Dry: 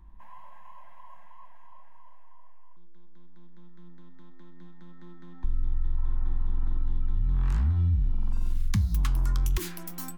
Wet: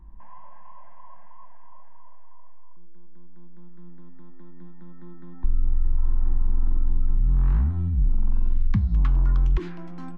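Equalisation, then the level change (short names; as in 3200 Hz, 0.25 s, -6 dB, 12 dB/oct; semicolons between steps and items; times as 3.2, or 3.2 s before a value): tape spacing loss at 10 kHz 43 dB; bell 85 Hz -8 dB 0.45 oct; +6.0 dB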